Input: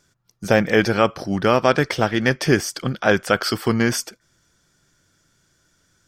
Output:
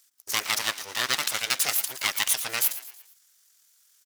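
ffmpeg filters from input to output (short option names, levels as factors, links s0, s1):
-filter_complex "[0:a]bandreject=f=427.4:t=h:w=4,bandreject=f=854.8:t=h:w=4,bandreject=f=1282.2:t=h:w=4,bandreject=f=1709.6:t=h:w=4,bandreject=f=2137:t=h:w=4,bandreject=f=2564.4:t=h:w=4,bandreject=f=2991.8:t=h:w=4,bandreject=f=3419.2:t=h:w=4,bandreject=f=3846.6:t=h:w=4,bandreject=f=4274:t=h:w=4,bandreject=f=4701.4:t=h:w=4,bandreject=f=5128.8:t=h:w=4,bandreject=f=5556.2:t=h:w=4,bandreject=f=5983.6:t=h:w=4,bandreject=f=6411:t=h:w=4,bandreject=f=6838.4:t=h:w=4,bandreject=f=7265.8:t=h:w=4,bandreject=f=7693.2:t=h:w=4,bandreject=f=8120.6:t=h:w=4,bandreject=f=8548:t=h:w=4,aeval=exprs='abs(val(0))':c=same,atempo=1.5,aderivative,asplit=2[s0][s1];[s1]asplit=4[s2][s3][s4][s5];[s2]adelay=114,afreqshift=85,volume=0.2[s6];[s3]adelay=228,afreqshift=170,volume=0.0923[s7];[s4]adelay=342,afreqshift=255,volume=0.0422[s8];[s5]adelay=456,afreqshift=340,volume=0.0195[s9];[s6][s7][s8][s9]amix=inputs=4:normalize=0[s10];[s0][s10]amix=inputs=2:normalize=0,volume=2.51"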